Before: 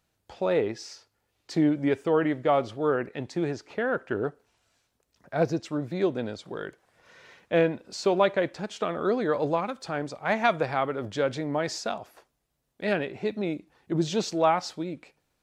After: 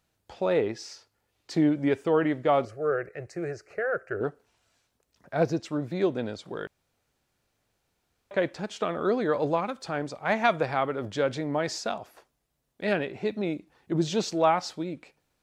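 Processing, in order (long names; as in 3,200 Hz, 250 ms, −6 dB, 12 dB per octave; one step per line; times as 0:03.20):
0:02.65–0:04.21: phaser with its sweep stopped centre 930 Hz, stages 6
0:06.67–0:08.31: fill with room tone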